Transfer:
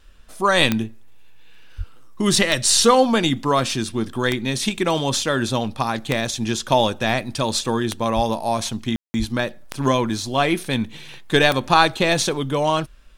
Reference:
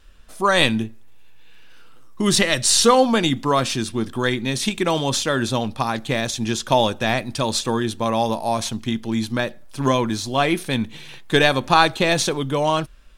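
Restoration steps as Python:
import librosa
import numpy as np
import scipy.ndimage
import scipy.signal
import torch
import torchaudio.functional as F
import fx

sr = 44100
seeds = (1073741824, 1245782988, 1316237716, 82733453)

y = fx.fix_declick_ar(x, sr, threshold=10.0)
y = fx.fix_deplosive(y, sr, at_s=(1.77, 8.15, 9.18))
y = fx.fix_ambience(y, sr, seeds[0], print_start_s=0.0, print_end_s=0.5, start_s=8.96, end_s=9.14)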